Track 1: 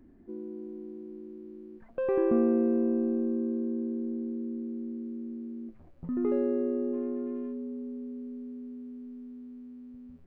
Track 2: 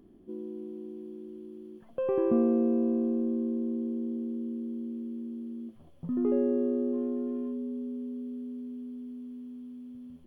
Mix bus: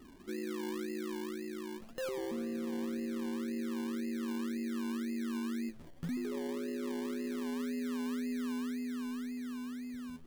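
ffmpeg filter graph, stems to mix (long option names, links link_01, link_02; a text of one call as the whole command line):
ffmpeg -i stem1.wav -i stem2.wav -filter_complex "[0:a]bass=frequency=250:gain=-4,treble=frequency=4000:gain=13,acompressor=threshold=-35dB:ratio=6,acrusher=samples=27:mix=1:aa=0.000001:lfo=1:lforange=16.2:lforate=1.9,volume=2.5dB[link_01];[1:a]volume=-5dB[link_02];[link_01][link_02]amix=inputs=2:normalize=0,alimiter=level_in=7dB:limit=-24dB:level=0:latency=1:release=39,volume=-7dB" out.wav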